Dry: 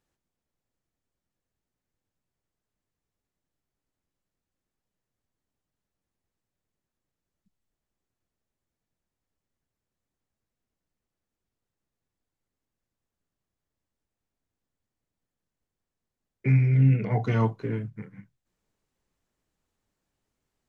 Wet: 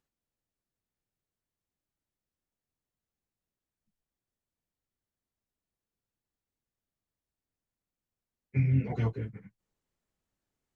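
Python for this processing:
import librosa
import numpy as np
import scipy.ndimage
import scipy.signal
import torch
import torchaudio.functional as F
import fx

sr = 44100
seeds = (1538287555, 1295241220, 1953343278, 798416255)

y = fx.stretch_vocoder_free(x, sr, factor=0.52)
y = fx.dynamic_eq(y, sr, hz=1100.0, q=1.6, threshold_db=-48.0, ratio=4.0, max_db=-5)
y = y * librosa.db_to_amplitude(-2.5)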